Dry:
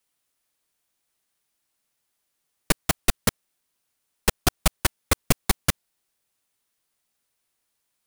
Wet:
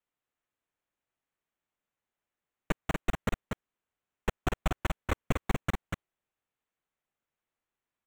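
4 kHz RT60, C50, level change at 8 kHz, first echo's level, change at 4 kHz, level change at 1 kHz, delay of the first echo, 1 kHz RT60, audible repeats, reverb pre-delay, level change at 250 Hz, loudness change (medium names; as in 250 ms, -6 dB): no reverb, no reverb, -22.0 dB, -4.5 dB, -16.0 dB, -6.5 dB, 240 ms, no reverb, 1, no reverb, -5.5 dB, -10.5 dB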